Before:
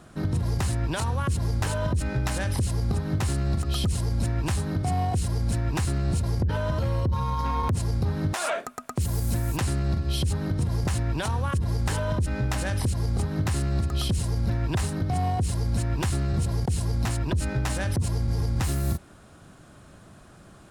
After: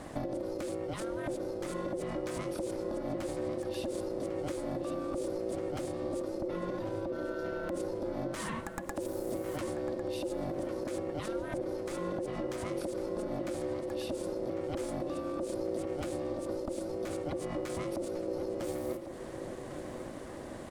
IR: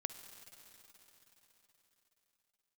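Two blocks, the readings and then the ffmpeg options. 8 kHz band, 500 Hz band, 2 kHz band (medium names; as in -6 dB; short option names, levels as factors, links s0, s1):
-12.5 dB, +1.5 dB, -10.0 dB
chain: -filter_complex "[0:a]alimiter=limit=0.0841:level=0:latency=1:release=39,acompressor=threshold=0.01:ratio=6,aeval=exprs='val(0)*sin(2*PI*440*n/s)':c=same,asplit=2[s0][s1];[s1]adelay=1100,lowpass=f=3500:p=1,volume=0.355,asplit=2[s2][s3];[s3]adelay=1100,lowpass=f=3500:p=1,volume=0.52,asplit=2[s4][s5];[s5]adelay=1100,lowpass=f=3500:p=1,volume=0.52,asplit=2[s6][s7];[s7]adelay=1100,lowpass=f=3500:p=1,volume=0.52,asplit=2[s8][s9];[s9]adelay=1100,lowpass=f=3500:p=1,volume=0.52,asplit=2[s10][s11];[s11]adelay=1100,lowpass=f=3500:p=1,volume=0.52[s12];[s0][s2][s4][s6][s8][s10][s12]amix=inputs=7:normalize=0,asplit=2[s13][s14];[1:a]atrim=start_sample=2205,afade=t=out:st=0.37:d=0.01,atrim=end_sample=16758,lowshelf=f=430:g=11[s15];[s14][s15]afir=irnorm=-1:irlink=0,volume=0.75[s16];[s13][s16]amix=inputs=2:normalize=0,volume=1.19"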